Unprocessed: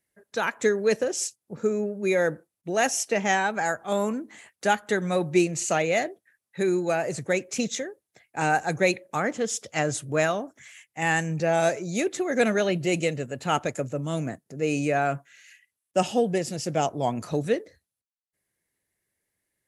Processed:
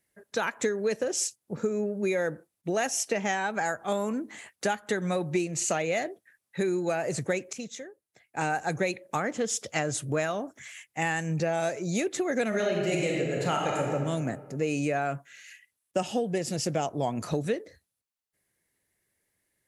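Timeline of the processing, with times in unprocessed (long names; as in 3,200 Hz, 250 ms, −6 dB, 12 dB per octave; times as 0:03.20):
0:07.53–0:08.69: fade in quadratic, from −14.5 dB
0:12.48–0:13.93: thrown reverb, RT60 1.4 s, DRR −1.5 dB
whole clip: downward compressor 5 to 1, threshold −28 dBFS; level +3 dB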